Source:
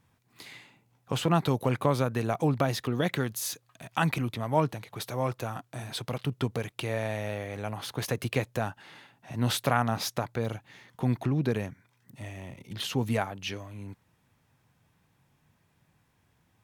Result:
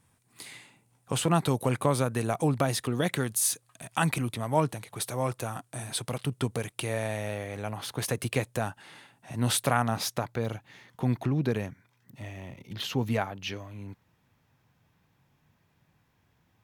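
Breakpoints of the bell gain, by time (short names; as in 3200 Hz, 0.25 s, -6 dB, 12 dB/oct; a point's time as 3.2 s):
bell 9100 Hz 0.58 oct
6.95 s +13.5 dB
7.8 s +2.5 dB
8.11 s +10 dB
9.74 s +10 dB
10.36 s 0 dB
11.68 s 0 dB
12.25 s -7 dB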